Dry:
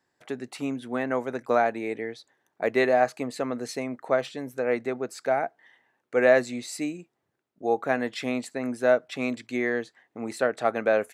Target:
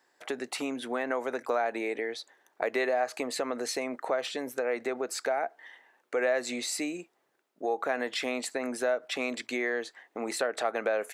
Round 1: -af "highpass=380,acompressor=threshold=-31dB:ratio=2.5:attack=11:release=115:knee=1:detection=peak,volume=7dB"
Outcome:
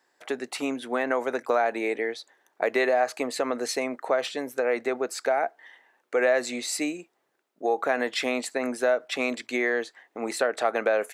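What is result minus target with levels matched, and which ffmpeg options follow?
downward compressor: peak gain reduction −5 dB
-af "highpass=380,acompressor=threshold=-39.5dB:ratio=2.5:attack=11:release=115:knee=1:detection=peak,volume=7dB"

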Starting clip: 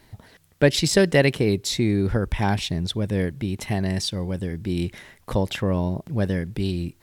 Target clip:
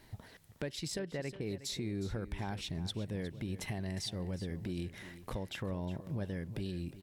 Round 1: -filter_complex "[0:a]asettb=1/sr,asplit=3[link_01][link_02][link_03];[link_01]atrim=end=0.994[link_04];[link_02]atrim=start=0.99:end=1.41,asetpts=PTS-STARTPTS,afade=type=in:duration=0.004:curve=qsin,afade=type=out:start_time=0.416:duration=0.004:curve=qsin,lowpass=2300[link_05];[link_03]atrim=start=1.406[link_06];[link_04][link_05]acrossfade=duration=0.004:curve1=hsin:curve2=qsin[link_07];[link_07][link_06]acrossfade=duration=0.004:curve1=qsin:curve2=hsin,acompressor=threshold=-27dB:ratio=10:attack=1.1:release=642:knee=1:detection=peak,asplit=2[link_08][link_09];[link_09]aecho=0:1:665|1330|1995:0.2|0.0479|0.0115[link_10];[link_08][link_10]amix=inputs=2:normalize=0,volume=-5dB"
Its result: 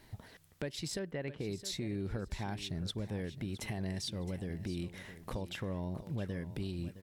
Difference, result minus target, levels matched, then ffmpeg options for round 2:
echo 302 ms late
-filter_complex "[0:a]asettb=1/sr,asplit=3[link_01][link_02][link_03];[link_01]atrim=end=0.994[link_04];[link_02]atrim=start=0.99:end=1.41,asetpts=PTS-STARTPTS,afade=type=in:duration=0.004:curve=qsin,afade=type=out:start_time=0.416:duration=0.004:curve=qsin,lowpass=2300[link_05];[link_03]atrim=start=1.406[link_06];[link_04][link_05]acrossfade=duration=0.004:curve1=hsin:curve2=qsin[link_07];[link_07][link_06]acrossfade=duration=0.004:curve1=qsin:curve2=hsin,acompressor=threshold=-27dB:ratio=10:attack=1.1:release=642:knee=1:detection=peak,asplit=2[link_08][link_09];[link_09]aecho=0:1:363|726|1089:0.2|0.0479|0.0115[link_10];[link_08][link_10]amix=inputs=2:normalize=0,volume=-5dB"

